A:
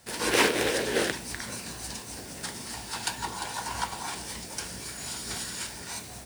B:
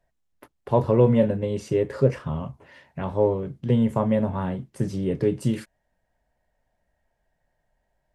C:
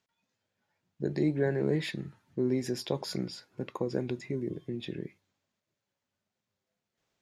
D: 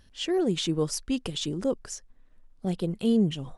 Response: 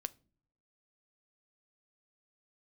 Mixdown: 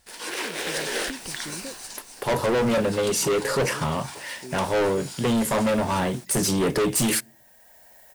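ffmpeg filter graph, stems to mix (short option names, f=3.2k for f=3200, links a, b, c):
-filter_complex "[0:a]highpass=f=720:p=1,alimiter=limit=-17dB:level=0:latency=1:release=223,volume=-5dB[a];[1:a]aemphasis=mode=production:type=riaa,dynaudnorm=f=300:g=3:m=11dB,adelay=1550,volume=-1.5dB,asplit=2[b][c];[c]volume=-12dB[d];[2:a]adelay=2050,volume=-13dB[e];[3:a]acompressor=threshold=-34dB:ratio=6,volume=-10dB[f];[4:a]atrim=start_sample=2205[g];[d][g]afir=irnorm=-1:irlink=0[h];[a][b][e][f][h]amix=inputs=5:normalize=0,dynaudnorm=f=210:g=5:m=9dB,asoftclip=type=hard:threshold=-19.5dB"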